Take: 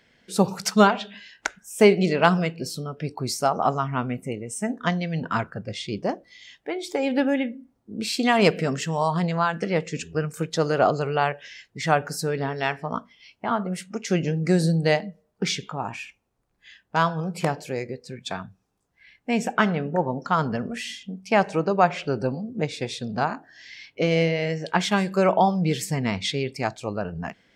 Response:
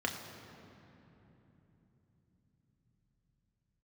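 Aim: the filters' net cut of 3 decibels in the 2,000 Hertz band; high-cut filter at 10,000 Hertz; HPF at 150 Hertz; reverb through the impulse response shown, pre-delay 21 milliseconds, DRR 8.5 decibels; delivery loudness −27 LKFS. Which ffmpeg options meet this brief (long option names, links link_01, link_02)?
-filter_complex "[0:a]highpass=150,lowpass=10000,equalizer=frequency=2000:width_type=o:gain=-4,asplit=2[link_01][link_02];[1:a]atrim=start_sample=2205,adelay=21[link_03];[link_02][link_03]afir=irnorm=-1:irlink=0,volume=-14.5dB[link_04];[link_01][link_04]amix=inputs=2:normalize=0,volume=-2dB"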